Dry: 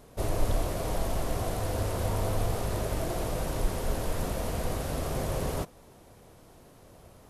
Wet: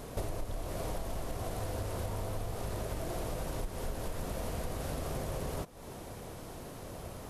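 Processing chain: compressor 12:1, threshold -42 dBFS, peak gain reduction 23 dB; gain +9 dB

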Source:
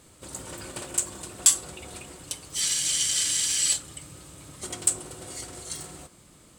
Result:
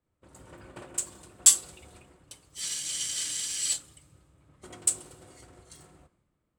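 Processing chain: three-band expander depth 100%; gain -7.5 dB

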